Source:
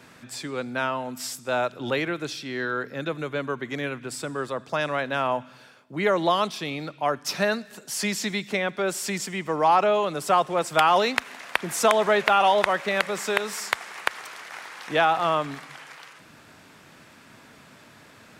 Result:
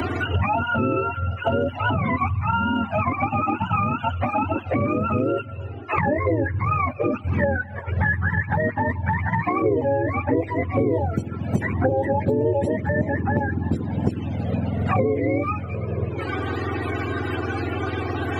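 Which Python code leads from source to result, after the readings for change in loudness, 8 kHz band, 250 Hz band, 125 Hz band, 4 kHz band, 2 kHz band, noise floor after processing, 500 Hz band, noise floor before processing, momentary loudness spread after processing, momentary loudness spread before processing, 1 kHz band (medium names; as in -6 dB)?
+1.5 dB, under -20 dB, +8.5 dB, +16.0 dB, no reading, +0.5 dB, -34 dBFS, +1.5 dB, -51 dBFS, 5 LU, 13 LU, -0.5 dB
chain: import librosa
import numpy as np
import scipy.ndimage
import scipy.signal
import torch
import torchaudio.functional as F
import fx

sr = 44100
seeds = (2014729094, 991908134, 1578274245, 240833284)

p1 = fx.octave_mirror(x, sr, pivot_hz=590.0)
p2 = fx.over_compress(p1, sr, threshold_db=-30.0, ratio=-1.0)
p3 = p1 + (p2 * librosa.db_to_amplitude(-1.5))
p4 = fx.env_flanger(p3, sr, rest_ms=3.2, full_db=-15.0)
p5 = fx.peak_eq(p4, sr, hz=160.0, db=-13.5, octaves=1.0)
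p6 = fx.band_squash(p5, sr, depth_pct=100)
y = p6 * librosa.db_to_amplitude(5.5)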